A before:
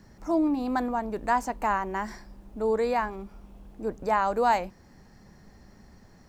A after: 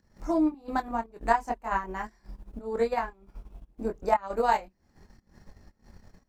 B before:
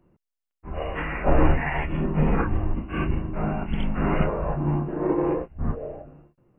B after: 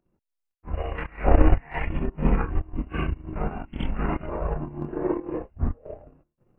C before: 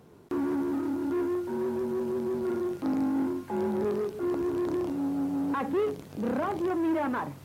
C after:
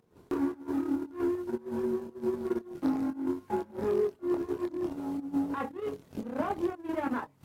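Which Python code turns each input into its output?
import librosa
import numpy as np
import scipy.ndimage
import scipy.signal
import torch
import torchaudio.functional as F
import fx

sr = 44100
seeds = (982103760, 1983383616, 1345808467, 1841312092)

y = fx.volume_shaper(x, sr, bpm=116, per_beat=1, depth_db=-12, release_ms=162.0, shape='slow start')
y = fx.chorus_voices(y, sr, voices=6, hz=0.49, base_ms=24, depth_ms=2.4, mix_pct=45)
y = fx.transient(y, sr, attack_db=6, sustain_db=-9)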